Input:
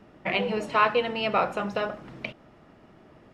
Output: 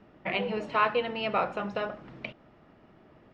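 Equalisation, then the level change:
low-pass filter 4,500 Hz 12 dB per octave
−3.5 dB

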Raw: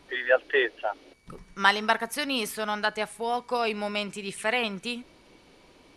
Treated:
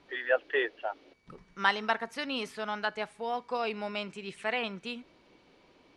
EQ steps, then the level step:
high-frequency loss of the air 94 metres
low-shelf EQ 71 Hz −9.5 dB
−4.5 dB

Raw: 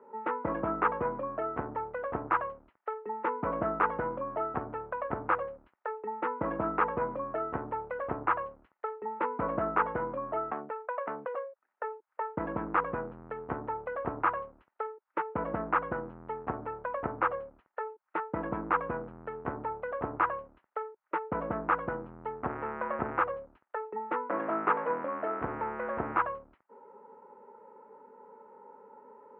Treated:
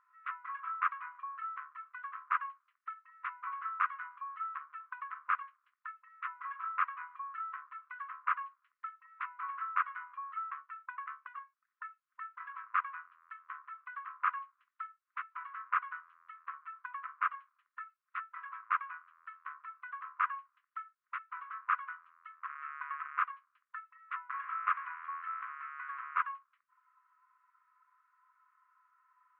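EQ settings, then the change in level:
dynamic equaliser 2,400 Hz, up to +3 dB, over −46 dBFS, Q 2.4
linear-phase brick-wall high-pass 1,000 Hz
high-frequency loss of the air 53 metres
−2.5 dB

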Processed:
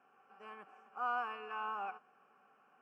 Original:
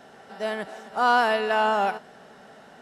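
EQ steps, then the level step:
formant filter a
phaser with its sweep stopped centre 1,600 Hz, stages 4
0.0 dB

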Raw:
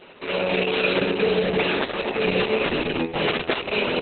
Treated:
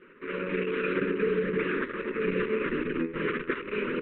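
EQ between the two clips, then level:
Butterworth band-reject 740 Hz, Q 0.81
low-pass filter 1,800 Hz 24 dB per octave
parametric band 75 Hz −14 dB 2.1 octaves
0.0 dB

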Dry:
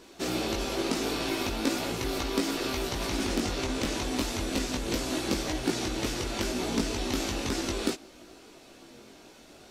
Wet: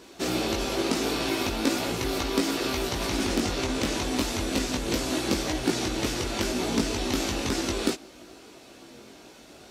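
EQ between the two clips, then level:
high-pass filter 41 Hz
+3.0 dB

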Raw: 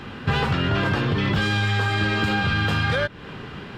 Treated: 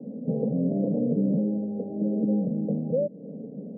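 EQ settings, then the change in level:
high-pass filter 190 Hz 24 dB per octave
Butterworth low-pass 550 Hz 48 dB per octave
phaser with its sweep stopped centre 360 Hz, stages 6
+6.0 dB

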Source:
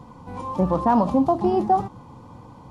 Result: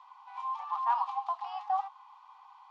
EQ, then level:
Chebyshev high-pass with heavy ripple 770 Hz, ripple 6 dB
high-frequency loss of the air 140 metres
−1.0 dB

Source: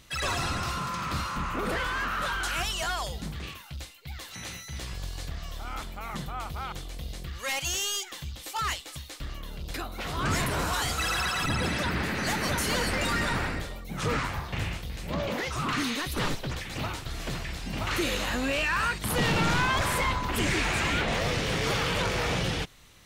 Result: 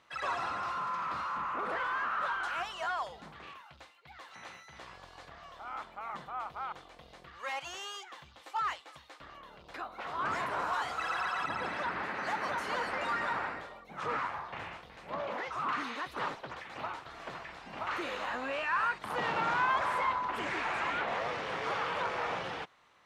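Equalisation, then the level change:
resonant band-pass 1,000 Hz, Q 1.3
0.0 dB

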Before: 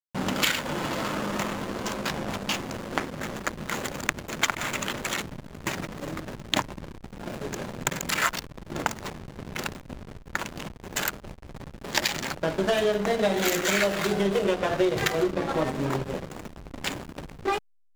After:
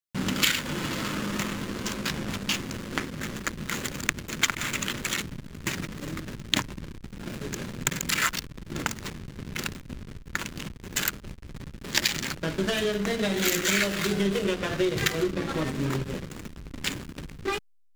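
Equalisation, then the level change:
parametric band 720 Hz −12 dB 1.4 octaves
+2.5 dB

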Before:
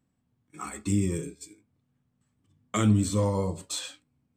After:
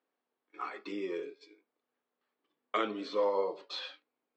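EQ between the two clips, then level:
elliptic band-pass filter 400–4,700 Hz, stop band 60 dB
high-frequency loss of the air 150 metres
+1.0 dB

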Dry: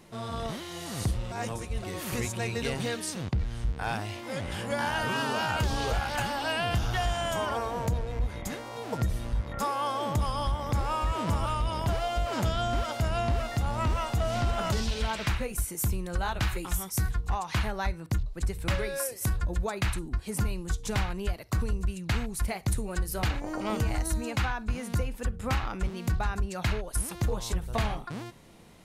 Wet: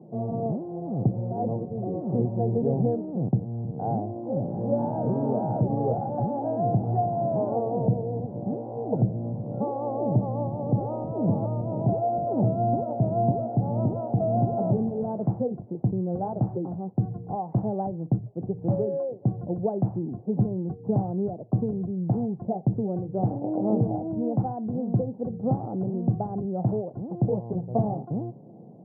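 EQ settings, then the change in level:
Chebyshev band-pass filter 120–770 Hz, order 4
low-shelf EQ 390 Hz +5.5 dB
+5.5 dB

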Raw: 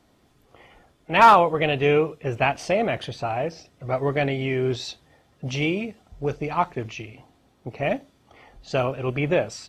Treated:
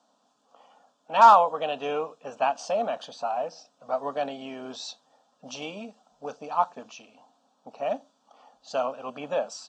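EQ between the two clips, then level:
elliptic band-pass filter 250–7,300 Hz, stop band 40 dB
phaser with its sweep stopped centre 860 Hz, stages 4
0.0 dB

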